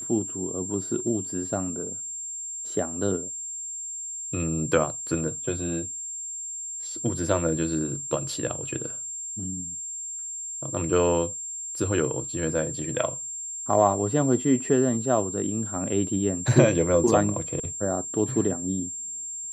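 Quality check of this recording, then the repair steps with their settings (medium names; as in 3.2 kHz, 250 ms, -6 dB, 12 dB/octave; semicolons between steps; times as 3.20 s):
whine 7.4 kHz -32 dBFS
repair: band-stop 7.4 kHz, Q 30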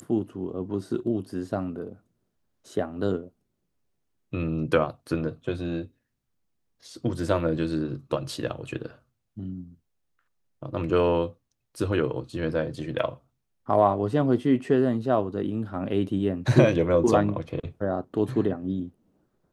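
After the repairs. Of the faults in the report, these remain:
nothing left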